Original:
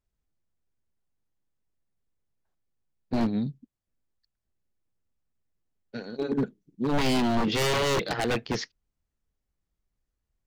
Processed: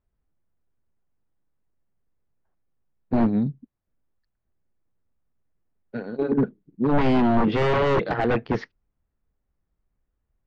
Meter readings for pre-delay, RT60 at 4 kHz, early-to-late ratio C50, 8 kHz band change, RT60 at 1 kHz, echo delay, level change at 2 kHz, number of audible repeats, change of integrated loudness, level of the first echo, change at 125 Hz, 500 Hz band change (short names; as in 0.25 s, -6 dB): none, none, none, under -15 dB, none, none, +1.5 dB, none, +4.5 dB, none, +5.5 dB, +5.5 dB